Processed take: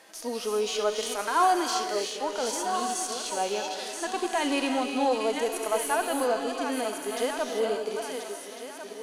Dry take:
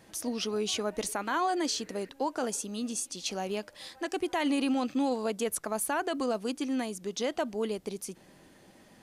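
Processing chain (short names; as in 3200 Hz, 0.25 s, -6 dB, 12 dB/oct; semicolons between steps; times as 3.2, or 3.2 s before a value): regenerating reverse delay 0.7 s, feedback 55%, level -8 dB; HPF 520 Hz 12 dB/oct; added harmonics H 4 -42 dB, 5 -27 dB, 6 -34 dB, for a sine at -18.5 dBFS; non-linear reverb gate 0.41 s rising, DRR 8.5 dB; harmonic-percussive split percussive -17 dB; gain +8.5 dB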